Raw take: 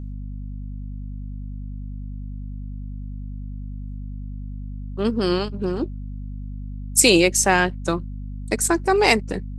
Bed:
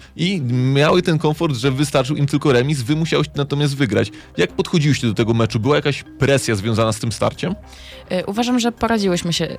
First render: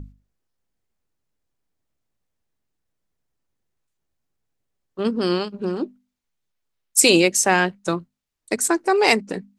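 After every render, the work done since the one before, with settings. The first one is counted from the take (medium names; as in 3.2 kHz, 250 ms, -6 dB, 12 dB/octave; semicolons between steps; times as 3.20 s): hum notches 50/100/150/200/250 Hz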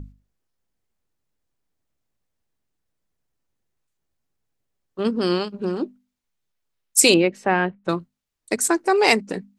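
7.14–7.89 s: distance through air 470 m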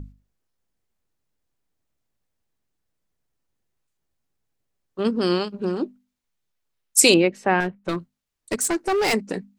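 7.60–9.14 s: hard clipper -18.5 dBFS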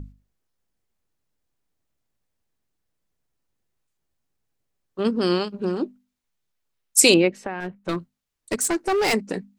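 7.37–7.89 s: compression, threshold -25 dBFS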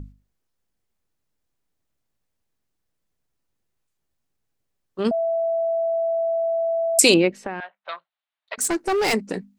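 5.11–6.99 s: bleep 663 Hz -19.5 dBFS; 7.60–8.58 s: elliptic band-pass 650–3800 Hz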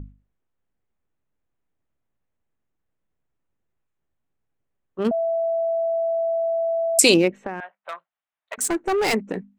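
local Wiener filter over 9 samples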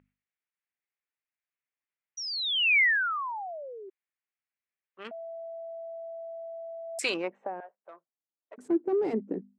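2.17–3.90 s: painted sound fall 370–5900 Hz -21 dBFS; band-pass sweep 2.2 kHz -> 310 Hz, 6.84–7.90 s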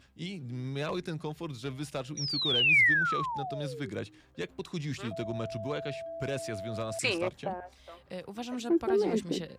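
add bed -20 dB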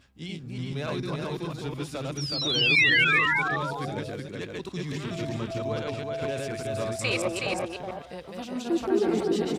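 chunks repeated in reverse 145 ms, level -1 dB; delay 371 ms -4 dB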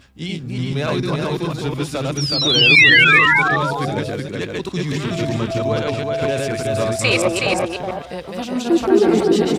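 trim +10.5 dB; peak limiter -1 dBFS, peak gain reduction 1 dB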